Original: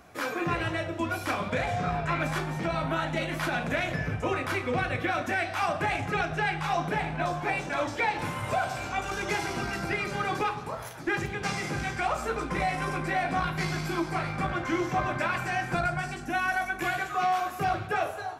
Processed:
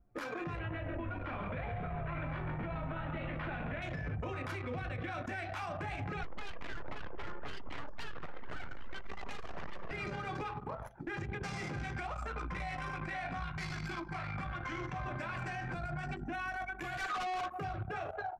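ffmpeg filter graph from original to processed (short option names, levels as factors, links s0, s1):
-filter_complex "[0:a]asettb=1/sr,asplit=3[s0][s1][s2];[s0]atrim=end=0.594[s3];[s1]atrim=start=0.59:end=3.82,asetpts=PTS-STARTPTS,afade=t=in:d=0.004:c=qsin,afade=t=out:st=3.226:d=0.004:c=qsin,lowpass=f=3000:w=0.5412,lowpass=f=3000:w=1.3066,asplit=9[s4][s5][s6][s7][s8][s9][s10][s11][s12];[s5]adelay=136,afreqshift=-43,volume=0.398[s13];[s6]adelay=272,afreqshift=-86,volume=0.245[s14];[s7]adelay=408,afreqshift=-129,volume=0.153[s15];[s8]adelay=544,afreqshift=-172,volume=0.0944[s16];[s9]adelay=680,afreqshift=-215,volume=0.0589[s17];[s10]adelay=816,afreqshift=-258,volume=0.0363[s18];[s11]adelay=952,afreqshift=-301,volume=0.0226[s19];[s12]adelay=1088,afreqshift=-344,volume=0.014[s20];[s4][s13][s14][s15][s16][s17][s18][s19][s20]amix=inputs=9:normalize=0,atrim=end_sample=142443[s21];[s2]atrim=start=3.816[s22];[s3][s21]acrossfade=d=0.004:c1=hsin:c2=qsin[s23];[s23][s22]acrossfade=d=0.004:c1=qsin:c2=hsin,asettb=1/sr,asplit=3[s24][s25][s26];[s24]atrim=end=6.234[s27];[s25]atrim=start=6.23:end=9.91,asetpts=PTS-STARTPTS,afade=t=in:d=0.004:c=qsin,afade=t=out:st=3.676:d=0.004:c=qsin,highpass=250,tiltshelf=f=730:g=4,aeval=exprs='abs(val(0))':c=same[s28];[s26]atrim=start=9.906[s29];[s27][s28]acrossfade=d=0.004:c1=hsin:c2=qsin[s30];[s30][s29]acrossfade=d=0.004:c1=qsin:c2=hsin,asettb=1/sr,asplit=3[s31][s32][s33];[s31]atrim=end=12.124[s34];[s32]atrim=start=12.12:end=15.05,asetpts=PTS-STARTPTS,afade=t=in:d=0.004:c=qsin,afade=t=out:st=2.926:d=0.004:c=qsin,equalizer=f=360:t=o:w=2:g=-9.5,asplit=2[s35][s36];[s36]adelay=48,volume=0.237[s37];[s35][s37]amix=inputs=2:normalize=0,atrim=end_sample=129213[s38];[s33]atrim=start=15.046[s39];[s34][s38]acrossfade=d=0.004:c1=hsin:c2=qsin[s40];[s40][s39]acrossfade=d=0.004:c1=qsin:c2=hsin,asettb=1/sr,asplit=3[s41][s42][s43];[s41]atrim=end=16.974[s44];[s42]atrim=start=16.97:end=17.46,asetpts=PTS-STARTPTS,afade=t=in:d=0.004:c=qsin,afade=t=out:st=0.486:d=0.004:c=qsin,acontrast=87,highpass=f=740:p=1,volume=39.8,asoftclip=hard,volume=0.0251[s45];[s43]atrim=start=17.456[s46];[s44][s45]acrossfade=d=0.004:c1=hsin:c2=qsin[s47];[s47][s46]acrossfade=d=0.004:c1=qsin:c2=hsin,anlmdn=6.31,acrossover=split=130[s48][s49];[s49]acompressor=threshold=0.0158:ratio=6[s50];[s48][s50]amix=inputs=2:normalize=0,alimiter=level_in=3.98:limit=0.0631:level=0:latency=1:release=93,volume=0.251,volume=1.78"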